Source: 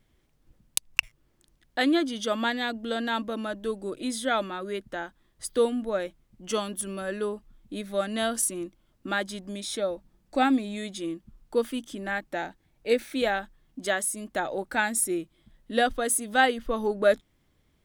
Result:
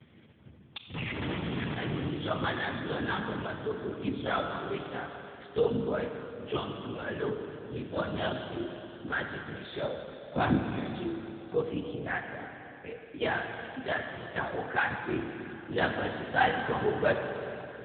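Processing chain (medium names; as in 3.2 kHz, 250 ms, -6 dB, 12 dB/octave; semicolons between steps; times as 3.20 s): 0.88–2.09 s: one-bit comparator; upward compressor, threshold -35 dBFS; LPC vocoder at 8 kHz whisper; high-pass 68 Hz 12 dB/octave; 12.19–13.21 s: compression 16:1, threshold -38 dBFS, peak gain reduction 21 dB; dynamic bell 580 Hz, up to -4 dB, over -40 dBFS, Q 2.2; gate -54 dBFS, range -23 dB; Schroeder reverb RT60 3.2 s, combs from 27 ms, DRR 4 dB; trim -1.5 dB; AMR-NB 7.95 kbps 8 kHz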